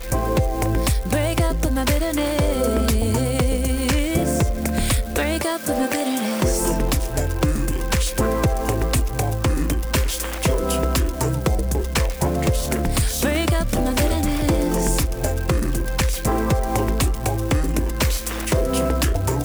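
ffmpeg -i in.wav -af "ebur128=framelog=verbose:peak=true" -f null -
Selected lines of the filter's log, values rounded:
Integrated loudness:
  I:         -21.5 LUFS
  Threshold: -31.5 LUFS
Loudness range:
  LRA:         1.2 LU
  Threshold: -41.5 LUFS
  LRA low:   -22.0 LUFS
  LRA high:  -20.8 LUFS
True peak:
  Peak:       -8.8 dBFS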